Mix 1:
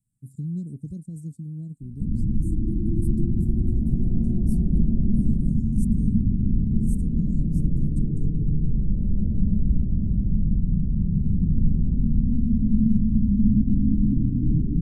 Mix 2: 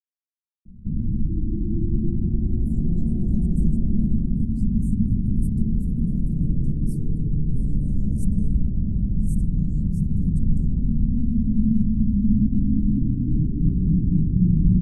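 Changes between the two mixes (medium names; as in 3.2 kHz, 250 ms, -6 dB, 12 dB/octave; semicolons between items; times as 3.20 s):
speech: entry +2.40 s; background: entry -1.15 s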